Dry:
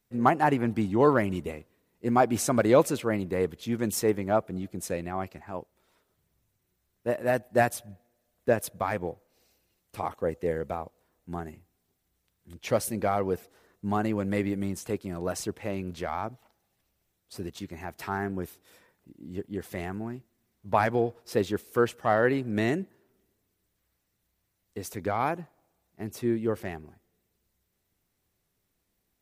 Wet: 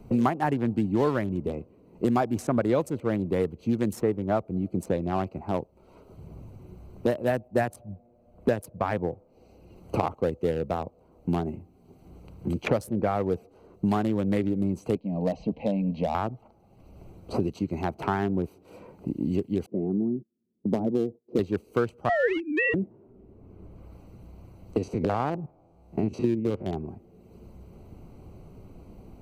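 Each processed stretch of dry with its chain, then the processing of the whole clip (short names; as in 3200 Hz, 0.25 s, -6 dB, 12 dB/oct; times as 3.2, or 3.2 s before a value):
14.95–16.15 LPF 3700 Hz 24 dB/oct + fixed phaser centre 370 Hz, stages 6
19.66–21.39 gate -51 dBFS, range -22 dB + Butterworth band-pass 280 Hz, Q 1.1
22.09–22.74 sine-wave speech + resonant high shelf 1800 Hz +12.5 dB, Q 3
24.78–26.73 stepped spectrum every 50 ms + treble ducked by the level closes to 1500 Hz, closed at -29 dBFS
whole clip: Wiener smoothing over 25 samples; low shelf 460 Hz +4 dB; three-band squash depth 100%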